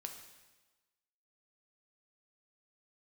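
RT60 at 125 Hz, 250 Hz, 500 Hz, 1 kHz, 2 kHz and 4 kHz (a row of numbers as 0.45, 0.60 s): 1.1, 1.2, 1.2, 1.2, 1.2, 1.2 s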